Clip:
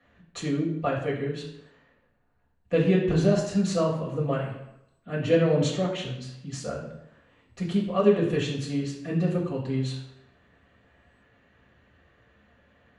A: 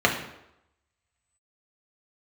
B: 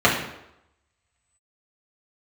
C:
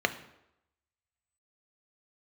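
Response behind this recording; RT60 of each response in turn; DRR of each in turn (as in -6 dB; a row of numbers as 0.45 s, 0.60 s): B; 0.85 s, 0.85 s, 0.85 s; -0.5 dB, -6.0 dB, 8.0 dB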